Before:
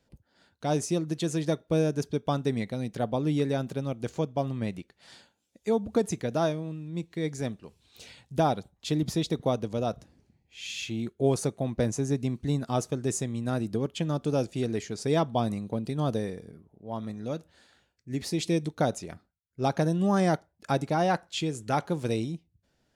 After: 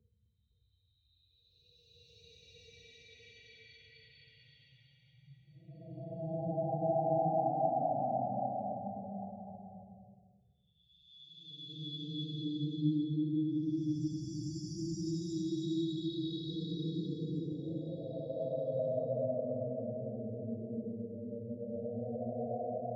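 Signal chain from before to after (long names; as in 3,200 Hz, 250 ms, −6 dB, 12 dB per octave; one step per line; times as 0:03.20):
expanding power law on the bin magnitudes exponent 4
extreme stretch with random phases 11×, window 0.25 s, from 0:07.77
echo through a band-pass that steps 257 ms, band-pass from 250 Hz, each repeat 0.7 octaves, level −5 dB
level −8.5 dB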